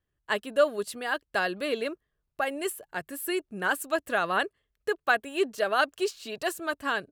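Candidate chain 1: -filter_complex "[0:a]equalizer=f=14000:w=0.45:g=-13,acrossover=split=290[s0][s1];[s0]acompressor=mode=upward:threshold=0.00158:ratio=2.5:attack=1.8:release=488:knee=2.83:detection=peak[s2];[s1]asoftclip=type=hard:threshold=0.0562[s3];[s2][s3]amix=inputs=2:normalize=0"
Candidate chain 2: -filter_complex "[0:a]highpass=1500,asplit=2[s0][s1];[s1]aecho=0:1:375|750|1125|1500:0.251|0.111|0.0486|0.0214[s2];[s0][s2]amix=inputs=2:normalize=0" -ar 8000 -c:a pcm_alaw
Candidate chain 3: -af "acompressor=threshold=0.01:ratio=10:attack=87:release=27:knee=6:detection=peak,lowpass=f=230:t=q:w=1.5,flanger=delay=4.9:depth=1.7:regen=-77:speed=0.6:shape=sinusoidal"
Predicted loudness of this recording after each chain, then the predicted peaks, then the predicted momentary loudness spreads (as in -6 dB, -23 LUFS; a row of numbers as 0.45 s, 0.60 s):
-32.5 LUFS, -35.0 LUFS, -49.0 LUFS; -21.0 dBFS, -14.5 dBFS, -34.0 dBFS; 6 LU, 10 LU, 9 LU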